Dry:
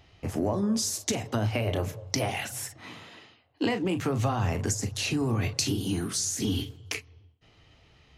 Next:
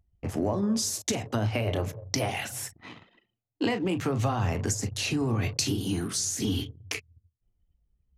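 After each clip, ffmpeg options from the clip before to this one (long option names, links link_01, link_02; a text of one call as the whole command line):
ffmpeg -i in.wav -af "anlmdn=0.1" out.wav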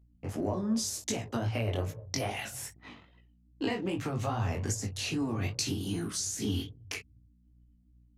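ffmpeg -i in.wav -af "aeval=exprs='val(0)+0.00141*(sin(2*PI*60*n/s)+sin(2*PI*2*60*n/s)/2+sin(2*PI*3*60*n/s)/3+sin(2*PI*4*60*n/s)/4+sin(2*PI*5*60*n/s)/5)':channel_layout=same,flanger=delay=17.5:depth=4.4:speed=2.5,volume=-1.5dB" out.wav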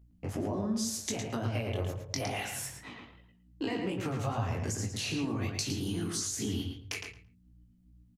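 ffmpeg -i in.wav -filter_complex "[0:a]acompressor=threshold=-37dB:ratio=2,asplit=2[link_01][link_02];[link_02]adelay=111,lowpass=frequency=4200:poles=1,volume=-4dB,asplit=2[link_03][link_04];[link_04]adelay=111,lowpass=frequency=4200:poles=1,volume=0.18,asplit=2[link_05][link_06];[link_06]adelay=111,lowpass=frequency=4200:poles=1,volume=0.18[link_07];[link_03][link_05][link_07]amix=inputs=3:normalize=0[link_08];[link_01][link_08]amix=inputs=2:normalize=0,volume=2.5dB" out.wav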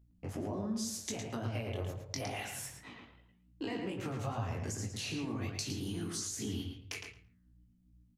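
ffmpeg -i in.wav -af "flanger=delay=8.7:depth=5.2:regen=-90:speed=1.4:shape=sinusoidal" out.wav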